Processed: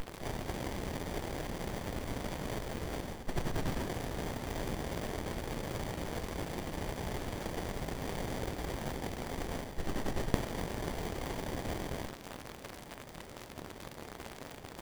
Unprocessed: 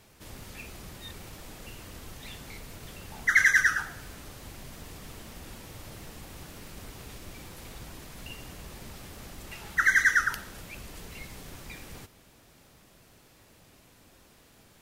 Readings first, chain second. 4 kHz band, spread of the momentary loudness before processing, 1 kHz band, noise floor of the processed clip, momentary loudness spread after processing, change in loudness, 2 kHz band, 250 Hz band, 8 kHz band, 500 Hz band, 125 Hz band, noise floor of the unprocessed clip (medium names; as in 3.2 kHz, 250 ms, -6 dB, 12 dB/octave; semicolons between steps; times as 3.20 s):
-1.5 dB, 23 LU, -1.0 dB, -50 dBFS, 10 LU, -16.0 dB, -18.5 dB, +9.0 dB, -7.0 dB, +11.0 dB, +6.5 dB, -59 dBFS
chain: resonant high shelf 4.4 kHz +12.5 dB, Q 1.5; hum notches 50/100/150/200/250/300/350 Hz; in parallel at -3 dB: word length cut 6-bit, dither triangular; on the sum: reverse; compression 6:1, threshold -31 dBFS, peak gain reduction 18.5 dB; reverse; sliding maximum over 33 samples; trim +3 dB